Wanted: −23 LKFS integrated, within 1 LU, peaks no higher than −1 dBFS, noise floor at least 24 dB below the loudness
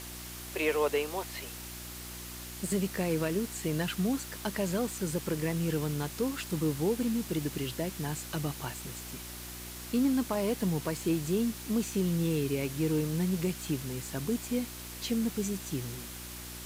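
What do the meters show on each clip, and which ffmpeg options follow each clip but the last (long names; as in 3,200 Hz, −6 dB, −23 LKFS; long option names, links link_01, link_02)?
mains hum 60 Hz; hum harmonics up to 360 Hz; level of the hum −46 dBFS; background noise floor −43 dBFS; target noise floor −57 dBFS; integrated loudness −32.5 LKFS; sample peak −17.5 dBFS; target loudness −23.0 LKFS
→ -af "bandreject=frequency=60:width_type=h:width=4,bandreject=frequency=120:width_type=h:width=4,bandreject=frequency=180:width_type=h:width=4,bandreject=frequency=240:width_type=h:width=4,bandreject=frequency=300:width_type=h:width=4,bandreject=frequency=360:width_type=h:width=4"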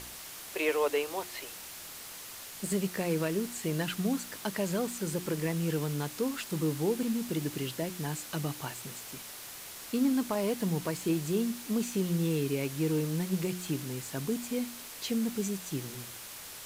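mains hum none found; background noise floor −45 dBFS; target noise floor −57 dBFS
→ -af "afftdn=noise_reduction=12:noise_floor=-45"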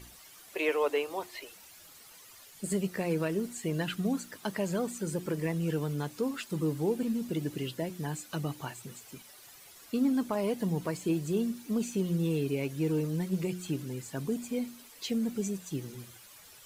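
background noise floor −54 dBFS; target noise floor −57 dBFS
→ -af "afftdn=noise_reduction=6:noise_floor=-54"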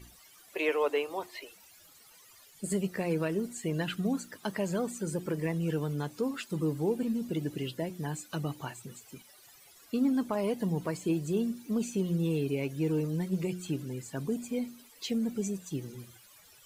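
background noise floor −58 dBFS; integrated loudness −33.0 LKFS; sample peak −18.5 dBFS; target loudness −23.0 LKFS
→ -af "volume=10dB"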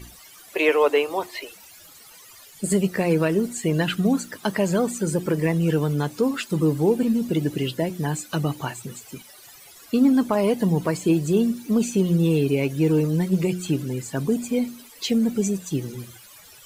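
integrated loudness −23.0 LKFS; sample peak −8.5 dBFS; background noise floor −48 dBFS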